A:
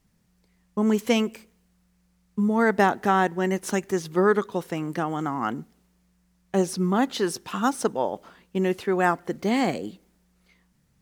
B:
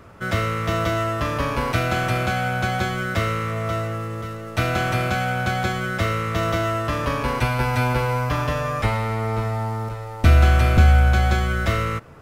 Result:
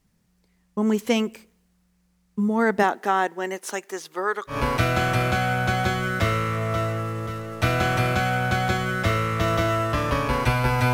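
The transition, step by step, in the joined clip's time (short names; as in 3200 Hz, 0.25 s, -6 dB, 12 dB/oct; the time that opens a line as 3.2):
A
2.82–4.59 HPF 290 Hz -> 770 Hz
4.53 switch to B from 1.48 s, crossfade 0.12 s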